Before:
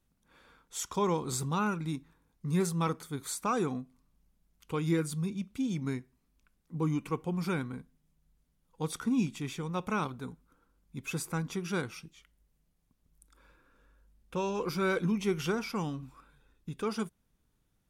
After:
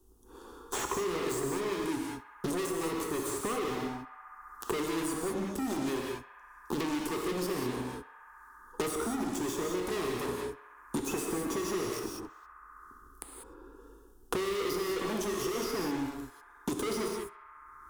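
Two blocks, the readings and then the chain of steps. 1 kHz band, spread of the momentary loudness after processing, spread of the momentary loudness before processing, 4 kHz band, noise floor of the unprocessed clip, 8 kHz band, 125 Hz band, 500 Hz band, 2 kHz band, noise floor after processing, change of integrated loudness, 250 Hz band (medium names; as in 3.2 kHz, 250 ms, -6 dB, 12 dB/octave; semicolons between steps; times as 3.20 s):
0.0 dB, 19 LU, 12 LU, +3.5 dB, -75 dBFS, +3.0 dB, -9.0 dB, +3.0 dB, 0.0 dB, -55 dBFS, -0.5 dB, -1.0 dB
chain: fifteen-band graphic EQ 400 Hz +11 dB, 1.6 kHz -9 dB, 4 kHz -7 dB; waveshaping leveller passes 5; static phaser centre 600 Hz, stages 6; hard clipper -26 dBFS, distortion -5 dB; band-passed feedback delay 67 ms, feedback 80%, band-pass 1.3 kHz, level -16 dB; gated-style reverb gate 220 ms flat, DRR 0 dB; three bands compressed up and down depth 100%; trim -8 dB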